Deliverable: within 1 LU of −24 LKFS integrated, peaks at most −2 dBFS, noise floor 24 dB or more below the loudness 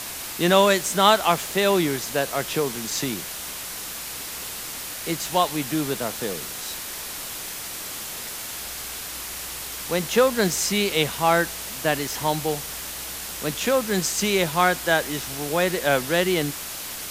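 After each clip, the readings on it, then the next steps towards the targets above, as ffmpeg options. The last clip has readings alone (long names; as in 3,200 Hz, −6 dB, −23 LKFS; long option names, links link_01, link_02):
background noise floor −34 dBFS; target noise floor −48 dBFS; integrated loudness −24.0 LKFS; sample peak −3.5 dBFS; target loudness −24.0 LKFS
→ -af "afftdn=noise_reduction=14:noise_floor=-34"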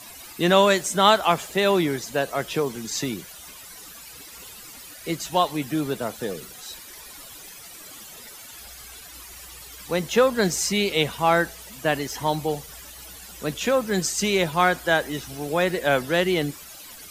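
background noise floor −43 dBFS; target noise floor −47 dBFS
→ -af "afftdn=noise_reduction=6:noise_floor=-43"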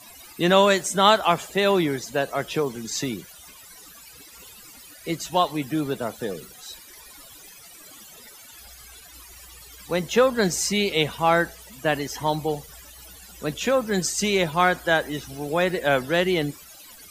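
background noise floor −47 dBFS; integrated loudness −23.0 LKFS; sample peak −3.5 dBFS; target loudness −24.0 LKFS
→ -af "volume=-1dB"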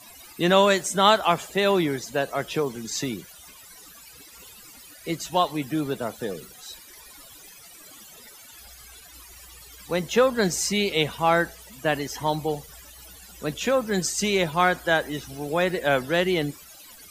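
integrated loudness −24.0 LKFS; sample peak −4.5 dBFS; background noise floor −48 dBFS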